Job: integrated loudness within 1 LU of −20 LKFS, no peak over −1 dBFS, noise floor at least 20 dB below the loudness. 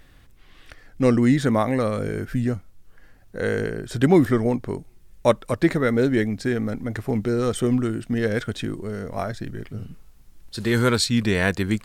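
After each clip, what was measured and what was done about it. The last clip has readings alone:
integrated loudness −22.5 LKFS; sample peak −4.0 dBFS; target loudness −20.0 LKFS
→ level +2.5 dB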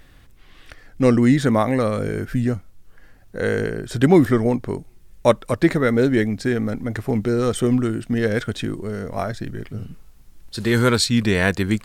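integrated loudness −20.0 LKFS; sample peak −1.5 dBFS; background noise floor −49 dBFS

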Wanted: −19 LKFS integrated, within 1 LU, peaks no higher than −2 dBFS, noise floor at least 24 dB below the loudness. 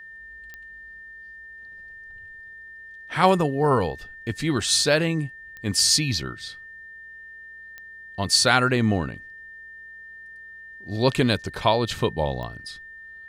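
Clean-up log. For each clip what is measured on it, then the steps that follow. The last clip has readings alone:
number of clicks 4; interfering tone 1,800 Hz; level of the tone −40 dBFS; integrated loudness −22.5 LKFS; sample peak −3.5 dBFS; target loudness −19.0 LKFS
→ click removal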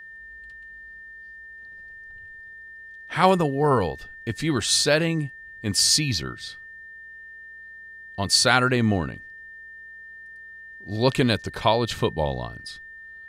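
number of clicks 0; interfering tone 1,800 Hz; level of the tone −40 dBFS
→ notch filter 1,800 Hz, Q 30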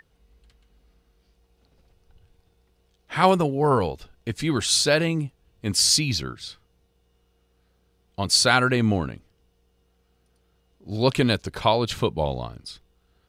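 interfering tone none found; integrated loudness −22.0 LKFS; sample peak −4.0 dBFS; target loudness −19.0 LKFS
→ level +3 dB
brickwall limiter −2 dBFS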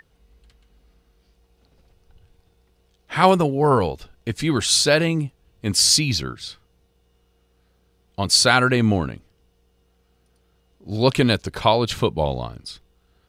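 integrated loudness −19.5 LKFS; sample peak −2.0 dBFS; background noise floor −64 dBFS

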